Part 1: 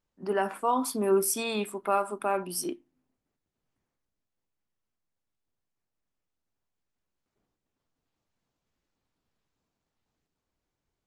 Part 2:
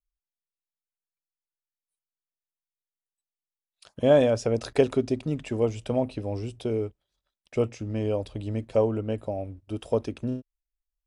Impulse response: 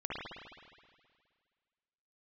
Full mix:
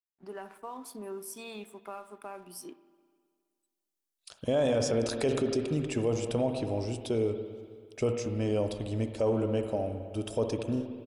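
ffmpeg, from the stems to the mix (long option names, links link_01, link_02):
-filter_complex "[0:a]acompressor=threshold=-28dB:ratio=3,aeval=exprs='sgn(val(0))*max(abs(val(0))-0.00237,0)':channel_layout=same,volume=-11dB,asplit=2[link_01][link_02];[link_02]volume=-18dB[link_03];[1:a]bass=frequency=250:gain=-1,treble=frequency=4000:gain=8,adelay=450,volume=-2.5dB,asplit=2[link_04][link_05];[link_05]volume=-9dB[link_06];[2:a]atrim=start_sample=2205[link_07];[link_03][link_06]amix=inputs=2:normalize=0[link_08];[link_08][link_07]afir=irnorm=-1:irlink=0[link_09];[link_01][link_04][link_09]amix=inputs=3:normalize=0,alimiter=limit=-19.5dB:level=0:latency=1:release=18"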